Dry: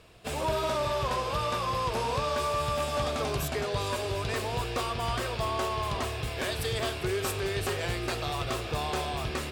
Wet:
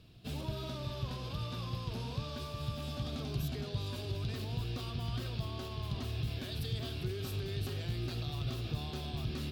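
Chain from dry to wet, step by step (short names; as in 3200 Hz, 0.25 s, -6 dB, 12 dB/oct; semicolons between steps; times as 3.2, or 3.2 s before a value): limiter -27 dBFS, peak gain reduction 5.5 dB; graphic EQ 125/250/500/1000/2000/4000/8000 Hz +7/+5/-9/-9/-9/+5/-12 dB; gain -3 dB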